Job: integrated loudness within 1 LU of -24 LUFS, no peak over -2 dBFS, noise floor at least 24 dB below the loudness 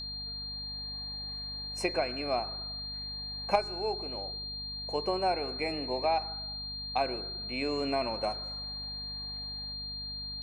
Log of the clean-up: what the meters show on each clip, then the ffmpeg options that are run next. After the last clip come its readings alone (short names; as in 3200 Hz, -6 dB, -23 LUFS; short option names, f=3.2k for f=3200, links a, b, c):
hum 50 Hz; harmonics up to 250 Hz; hum level -45 dBFS; steady tone 4200 Hz; tone level -37 dBFS; loudness -33.5 LUFS; peak -13.0 dBFS; loudness target -24.0 LUFS
-> -af "bandreject=f=50:t=h:w=6,bandreject=f=100:t=h:w=6,bandreject=f=150:t=h:w=6,bandreject=f=200:t=h:w=6,bandreject=f=250:t=h:w=6"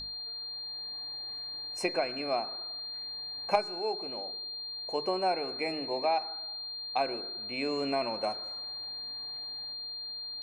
hum none; steady tone 4200 Hz; tone level -37 dBFS
-> -af "bandreject=f=4.2k:w=30"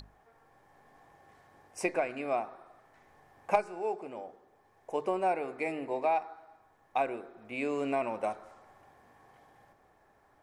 steady tone none; loudness -33.5 LUFS; peak -13.5 dBFS; loudness target -24.0 LUFS
-> -af "volume=9.5dB"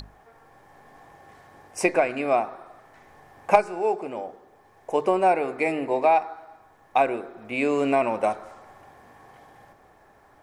loudness -24.0 LUFS; peak -4.0 dBFS; noise floor -57 dBFS